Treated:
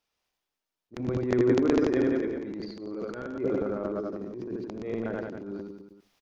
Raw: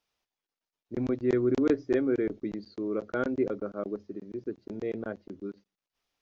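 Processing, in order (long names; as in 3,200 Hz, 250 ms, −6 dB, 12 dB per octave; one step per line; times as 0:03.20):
0:02.04–0:03.37: downward compressor 6 to 1, threshold −34 dBFS, peak gain reduction 11 dB
reverse bouncing-ball delay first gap 80 ms, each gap 1.1×, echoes 5
transient designer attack −11 dB, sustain +10 dB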